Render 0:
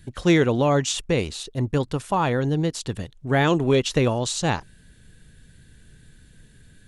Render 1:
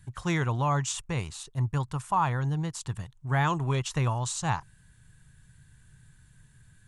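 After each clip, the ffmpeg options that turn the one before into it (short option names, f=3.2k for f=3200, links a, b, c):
-af "equalizer=f=125:t=o:w=1:g=9,equalizer=f=250:t=o:w=1:g=-7,equalizer=f=500:t=o:w=1:g=-9,equalizer=f=1k:t=o:w=1:g=11,equalizer=f=4k:t=o:w=1:g=-4,equalizer=f=8k:t=o:w=1:g=6,volume=-8.5dB"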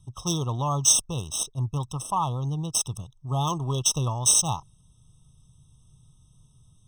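-af "aexciter=amount=9.6:drive=6.3:freq=4k,adynamicsmooth=sensitivity=2:basefreq=3k,afftfilt=real='re*eq(mod(floor(b*sr/1024/1300),2),0)':imag='im*eq(mod(floor(b*sr/1024/1300),2),0)':win_size=1024:overlap=0.75"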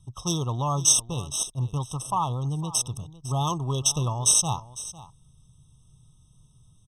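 -af "aecho=1:1:503:0.141,aresample=32000,aresample=44100"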